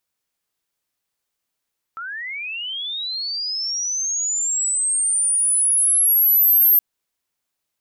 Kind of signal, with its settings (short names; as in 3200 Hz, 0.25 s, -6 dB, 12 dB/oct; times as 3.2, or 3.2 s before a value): chirp linear 1300 Hz -> 13000 Hz -28 dBFS -> -10.5 dBFS 4.82 s